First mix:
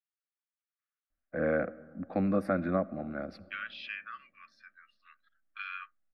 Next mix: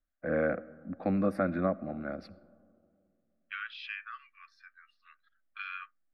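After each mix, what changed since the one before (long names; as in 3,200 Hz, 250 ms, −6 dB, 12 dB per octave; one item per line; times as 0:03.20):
first voice: entry −1.10 s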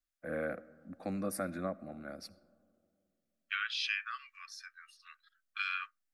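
first voice −9.0 dB
master: remove high-frequency loss of the air 410 metres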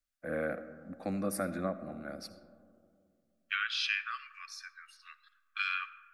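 first voice: send +10.0 dB
second voice: send on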